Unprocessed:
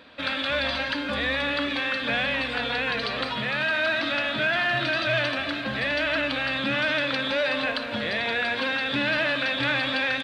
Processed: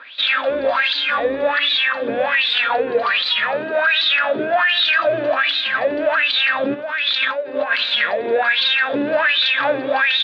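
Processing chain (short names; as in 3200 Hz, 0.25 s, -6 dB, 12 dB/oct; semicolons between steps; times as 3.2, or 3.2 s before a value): 6.74–8.26 negative-ratio compressor -29 dBFS, ratio -0.5; wah 1.3 Hz 370–3900 Hz, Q 6.2; maximiser +29 dB; gain -7.5 dB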